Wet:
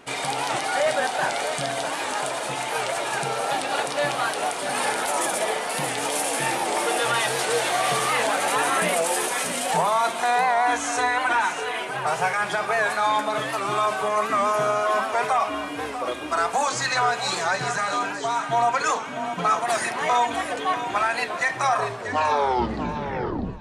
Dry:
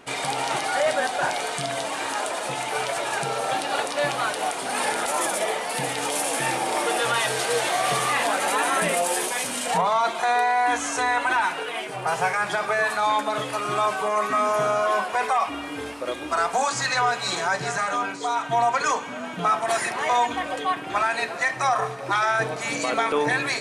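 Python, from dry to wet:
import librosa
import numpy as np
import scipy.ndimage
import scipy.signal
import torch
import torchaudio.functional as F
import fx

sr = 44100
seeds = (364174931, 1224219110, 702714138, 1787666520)

y = fx.tape_stop_end(x, sr, length_s=1.87)
y = fx.echo_feedback(y, sr, ms=642, feedback_pct=18, wet_db=-10.0)
y = fx.record_warp(y, sr, rpm=78.0, depth_cents=100.0)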